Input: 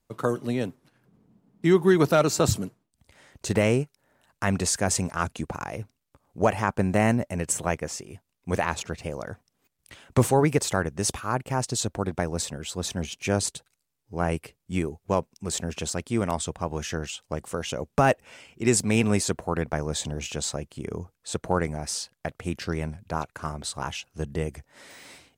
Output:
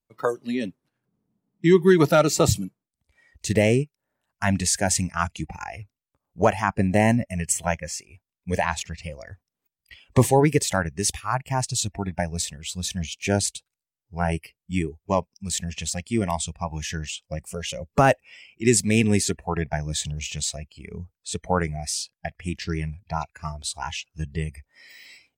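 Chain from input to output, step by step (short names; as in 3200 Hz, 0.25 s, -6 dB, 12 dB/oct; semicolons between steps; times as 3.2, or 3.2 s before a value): spectral noise reduction 17 dB; gain +3 dB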